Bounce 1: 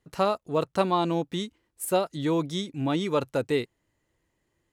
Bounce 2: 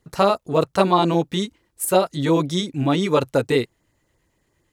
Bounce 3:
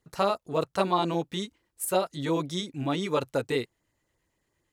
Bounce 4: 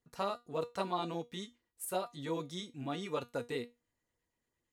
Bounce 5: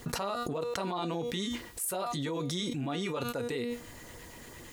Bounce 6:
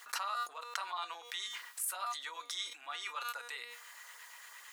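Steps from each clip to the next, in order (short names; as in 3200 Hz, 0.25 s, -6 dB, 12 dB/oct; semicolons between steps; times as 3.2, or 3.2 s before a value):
LFO notch sine 8.7 Hz 250–3200 Hz; gain +8.5 dB
low shelf 460 Hz -3.5 dB; gain -7 dB
resonator 240 Hz, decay 0.22 s, harmonics all, mix 70%; gain -2 dB
fast leveller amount 100%; gain -2.5 dB
ladder high-pass 980 Hz, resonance 35%; gain +5 dB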